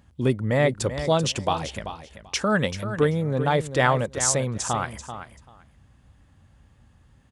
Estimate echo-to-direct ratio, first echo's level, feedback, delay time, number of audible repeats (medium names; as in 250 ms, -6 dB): -10.5 dB, -10.5 dB, 16%, 387 ms, 2